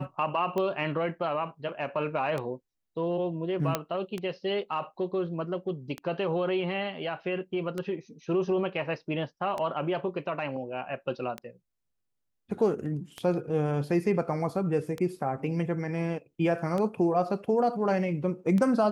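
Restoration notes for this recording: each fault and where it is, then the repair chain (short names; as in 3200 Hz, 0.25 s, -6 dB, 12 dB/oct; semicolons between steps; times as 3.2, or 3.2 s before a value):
tick 33 1/3 rpm -19 dBFS
3.75 pop -11 dBFS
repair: de-click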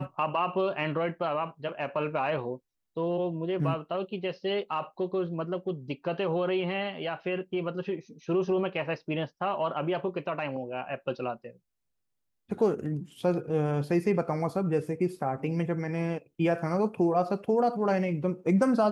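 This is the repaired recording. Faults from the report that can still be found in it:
none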